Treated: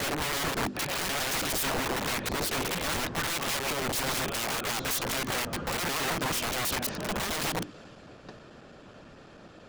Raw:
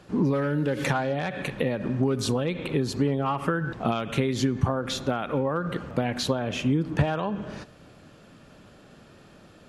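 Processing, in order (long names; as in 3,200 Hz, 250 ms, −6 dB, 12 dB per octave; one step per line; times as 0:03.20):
slices reordered back to front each 109 ms, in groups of 7
in parallel at 0 dB: downward compressor 16 to 1, threshold −37 dBFS, peak gain reduction 21.5 dB
on the sum: bass and treble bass −3 dB, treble +8 dB
soft clipping −22.5 dBFS, distortion −12 dB
high-frequency loss of the air 93 metres
mains-hum notches 50/100/150/200/250/300/350/400 Hz
wrap-around overflow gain 28.5 dB
harmonic and percussive parts rebalanced percussive +5 dB
multiband upward and downward expander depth 40%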